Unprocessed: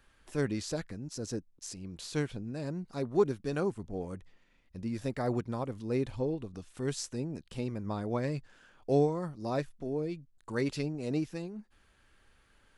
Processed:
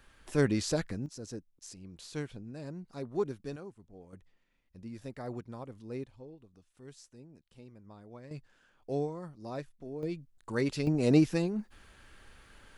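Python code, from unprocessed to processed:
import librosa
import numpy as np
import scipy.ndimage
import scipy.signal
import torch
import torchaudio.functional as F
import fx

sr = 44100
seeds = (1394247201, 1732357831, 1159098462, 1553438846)

y = fx.gain(x, sr, db=fx.steps((0.0, 4.5), (1.06, -5.5), (3.56, -15.0), (4.13, -8.5), (6.04, -17.0), (8.31, -7.0), (10.03, 1.0), (10.87, 9.0)))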